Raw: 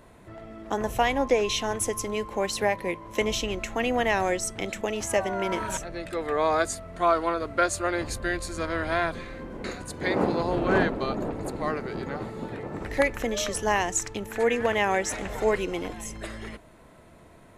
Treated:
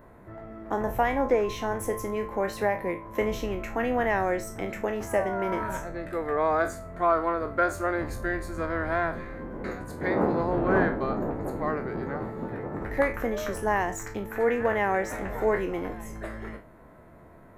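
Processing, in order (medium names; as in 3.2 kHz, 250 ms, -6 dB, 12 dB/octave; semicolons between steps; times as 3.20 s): spectral sustain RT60 0.30 s; in parallel at -9.5 dB: saturation -23 dBFS, distortion -10 dB; on the sum: high-order bell 5.1 kHz -14 dB 2.3 oct; trim -2.5 dB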